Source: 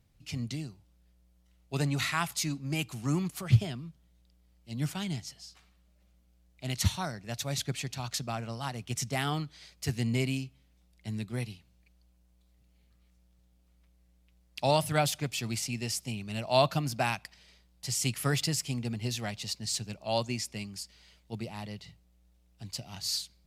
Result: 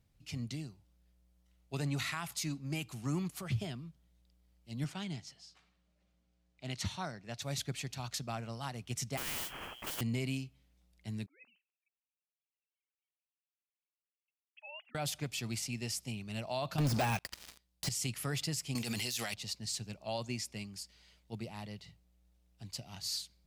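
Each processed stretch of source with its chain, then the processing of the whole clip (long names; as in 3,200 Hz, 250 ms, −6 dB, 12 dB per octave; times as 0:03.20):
0:04.84–0:07.42: high-pass filter 120 Hz 6 dB per octave + high-frequency loss of the air 53 metres
0:09.17–0:10.01: voice inversion scrambler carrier 3,200 Hz + noise that follows the level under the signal 20 dB + every bin compressed towards the loudest bin 4 to 1
0:11.26–0:14.95: three sine waves on the formant tracks + resonant band-pass 2,700 Hz, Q 6.4 + spectral tilt −4 dB per octave
0:16.78–0:17.89: high-shelf EQ 3,700 Hz +7 dB + leveller curve on the samples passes 5
0:18.75–0:19.34: spectral tilt +4 dB per octave + envelope flattener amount 70%
whole clip: de-essing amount 45%; brickwall limiter −21.5 dBFS; level −4.5 dB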